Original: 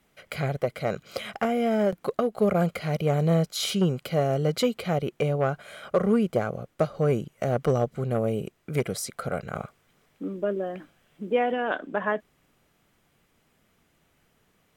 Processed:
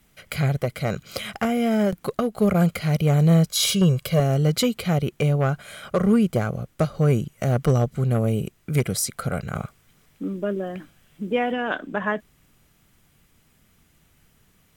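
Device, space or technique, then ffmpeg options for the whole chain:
smiley-face EQ: -filter_complex "[0:a]asettb=1/sr,asplit=3[link_01][link_02][link_03];[link_01]atrim=end=3.494[link_04];[link_02]atrim=start=3.49:end=4.2,asetpts=PTS-STARTPTS,afade=type=in:duration=0.004:curve=qsin,afade=type=out:start_time=0.706:duration=0.004:curve=qsin,aecho=1:1:1.8:0.64,atrim=end_sample=31311[link_05];[link_03]atrim=start=4.196[link_06];[link_04][link_05]acrossfade=duration=0.004:curve1=hsin:curve2=qsin[link_07];[link_07][link_06]acrossfade=duration=0.004:curve1=qsin:curve2=hsin,lowshelf=frequency=170:gain=9,equalizer=frequency=540:width_type=o:width=1.6:gain=-4.5,highshelf=frequency=5100:gain=7.5,volume=3dB"

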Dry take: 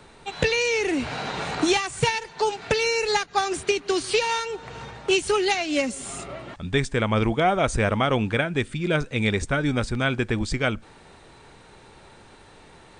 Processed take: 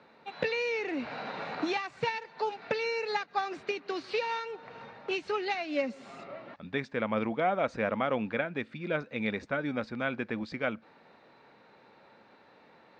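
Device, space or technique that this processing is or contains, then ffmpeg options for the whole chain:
kitchen radio: -af "highpass=220,equalizer=frequency=220:width_type=q:width=4:gain=4,equalizer=frequency=380:width_type=q:width=4:gain=-5,equalizer=frequency=540:width_type=q:width=4:gain=4,equalizer=frequency=3200:width_type=q:width=4:gain=-8,lowpass=frequency=4100:width=0.5412,lowpass=frequency=4100:width=1.3066,volume=-7.5dB"

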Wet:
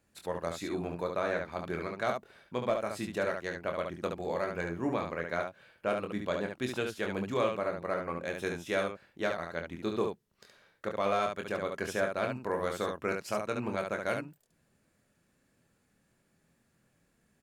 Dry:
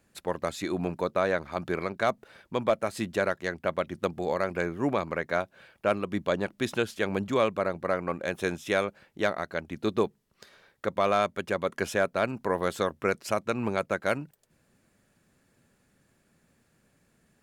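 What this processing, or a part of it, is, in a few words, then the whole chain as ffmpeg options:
slapback doubling: -filter_complex "[0:a]asplit=3[link_01][link_02][link_03];[link_02]adelay=24,volume=-6dB[link_04];[link_03]adelay=71,volume=-5dB[link_05];[link_01][link_04][link_05]amix=inputs=3:normalize=0,volume=-6.5dB"

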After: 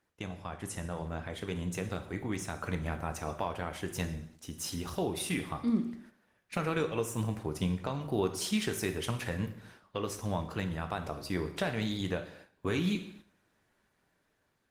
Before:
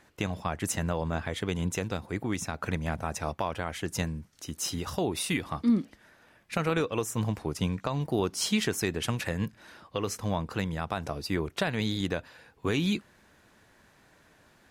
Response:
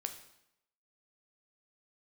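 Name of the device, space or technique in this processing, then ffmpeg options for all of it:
speakerphone in a meeting room: -filter_complex "[1:a]atrim=start_sample=2205[link_01];[0:a][link_01]afir=irnorm=-1:irlink=0,dynaudnorm=framelen=610:gausssize=5:maxgain=5dB,agate=range=-8dB:threshold=-45dB:ratio=16:detection=peak,volume=-7dB" -ar 48000 -c:a libopus -b:a 24k

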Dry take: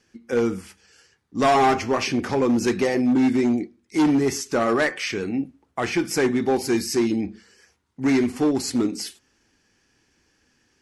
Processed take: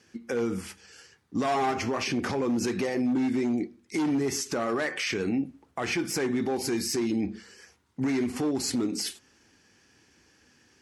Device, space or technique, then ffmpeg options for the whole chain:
podcast mastering chain: -af "highpass=63,deesser=0.45,acompressor=threshold=-26dB:ratio=4,alimiter=limit=-23.5dB:level=0:latency=1:release=52,volume=4dB" -ar 44100 -c:a libmp3lame -b:a 112k

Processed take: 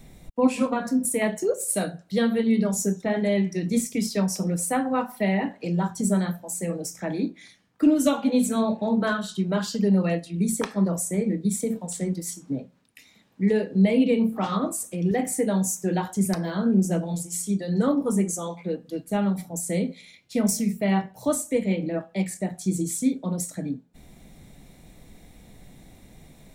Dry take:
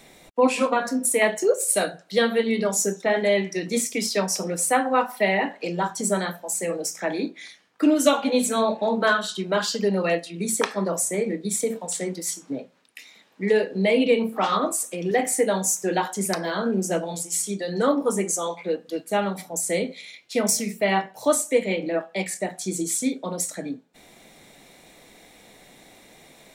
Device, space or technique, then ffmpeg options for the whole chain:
smiley-face EQ: -af "tiltshelf=frequency=640:gain=9.5,lowshelf=frequency=120:gain=8,equalizer=frequency=410:width_type=o:width=1.9:gain=-8,highshelf=frequency=7300:gain=8"

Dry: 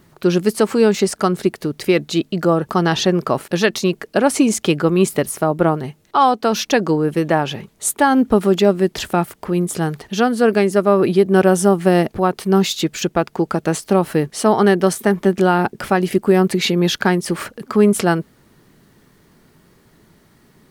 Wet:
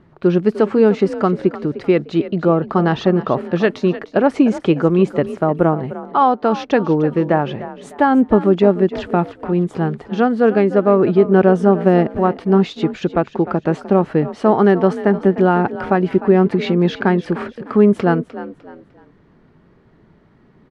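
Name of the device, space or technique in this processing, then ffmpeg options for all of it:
phone in a pocket: -filter_complex "[0:a]lowpass=3400,highshelf=frequency=2200:gain=-11,asplit=4[link_01][link_02][link_03][link_04];[link_02]adelay=302,afreqshift=41,volume=-14.5dB[link_05];[link_03]adelay=604,afreqshift=82,volume=-24.1dB[link_06];[link_04]adelay=906,afreqshift=123,volume=-33.8dB[link_07];[link_01][link_05][link_06][link_07]amix=inputs=4:normalize=0,volume=1.5dB"

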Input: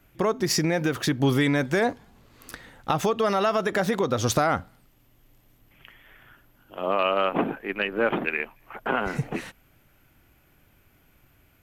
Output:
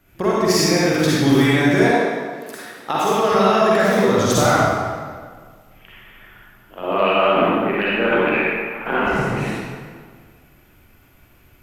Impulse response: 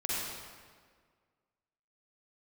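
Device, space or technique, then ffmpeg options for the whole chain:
stairwell: -filter_complex "[1:a]atrim=start_sample=2205[link_01];[0:a][link_01]afir=irnorm=-1:irlink=0,asettb=1/sr,asplit=3[link_02][link_03][link_04];[link_02]atrim=end=1.914[link_05];[link_03]atrim=start=1.91:end=3.32,asetpts=PTS-STARTPTS,afade=type=in:duration=0.004:curve=qsin,afade=type=out:start_time=1.406:duration=0.004:curve=qsin,highpass=240[link_06];[link_04]atrim=start=3.316[link_07];[link_05][link_06]acrossfade=duration=0.004:curve1=hsin:curve2=qsin[link_08];[link_08][link_07]acrossfade=duration=0.004:curve1=qsin:curve2=hsin,volume=2dB"

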